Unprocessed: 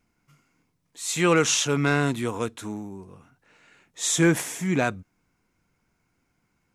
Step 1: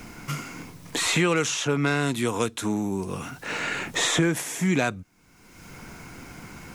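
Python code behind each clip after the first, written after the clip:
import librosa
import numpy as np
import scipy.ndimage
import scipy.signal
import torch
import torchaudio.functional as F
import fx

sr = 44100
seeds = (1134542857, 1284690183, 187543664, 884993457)

y = fx.band_squash(x, sr, depth_pct=100)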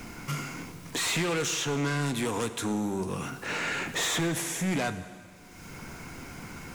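y = 10.0 ** (-25.0 / 20.0) * np.tanh(x / 10.0 ** (-25.0 / 20.0))
y = fx.rev_plate(y, sr, seeds[0], rt60_s=2.0, hf_ratio=0.95, predelay_ms=0, drr_db=11.0)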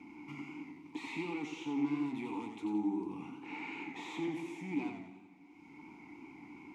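y = fx.vowel_filter(x, sr, vowel='u')
y = fx.echo_warbled(y, sr, ms=89, feedback_pct=41, rate_hz=2.8, cents=104, wet_db=-5.5)
y = y * librosa.db_to_amplitude(1.0)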